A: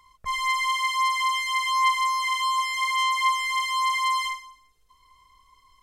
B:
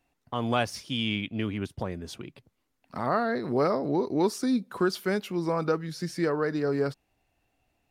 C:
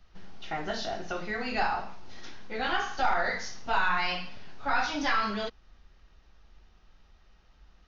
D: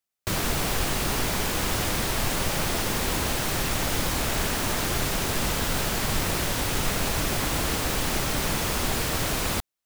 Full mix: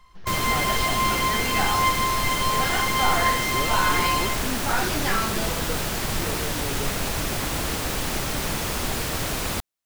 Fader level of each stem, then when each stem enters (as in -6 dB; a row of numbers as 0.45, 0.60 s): -1.0, -8.0, +1.0, -0.5 dB; 0.00, 0.00, 0.00, 0.00 s